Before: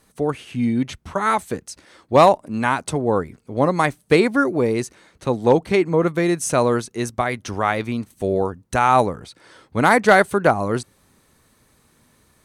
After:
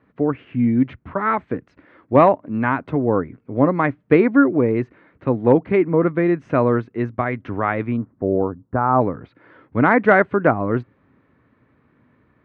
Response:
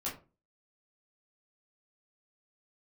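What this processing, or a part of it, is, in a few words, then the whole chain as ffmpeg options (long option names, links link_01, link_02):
bass cabinet: -filter_complex "[0:a]asplit=3[link_01][link_02][link_03];[link_01]afade=type=out:start_time=7.96:duration=0.02[link_04];[link_02]lowpass=frequency=1300:width=0.5412,lowpass=frequency=1300:width=1.3066,afade=type=in:start_time=7.96:duration=0.02,afade=type=out:start_time=9:duration=0.02[link_05];[link_03]afade=type=in:start_time=9:duration=0.02[link_06];[link_04][link_05][link_06]amix=inputs=3:normalize=0,highpass=70,equalizer=frequency=120:width_type=q:width=4:gain=4,equalizer=frequency=280:width_type=q:width=4:gain=7,equalizer=frequency=810:width_type=q:width=4:gain=-4,lowpass=frequency=2200:width=0.5412,lowpass=frequency=2200:width=1.3066"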